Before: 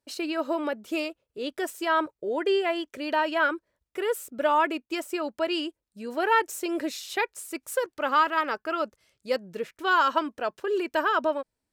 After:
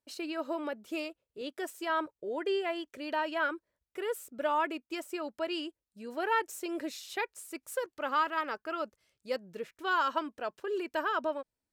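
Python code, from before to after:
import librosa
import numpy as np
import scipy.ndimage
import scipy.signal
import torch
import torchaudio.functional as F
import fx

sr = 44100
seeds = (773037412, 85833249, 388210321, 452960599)

y = fx.highpass(x, sr, hz=140.0, slope=12, at=(1.41, 1.9))
y = y * 10.0 ** (-7.0 / 20.0)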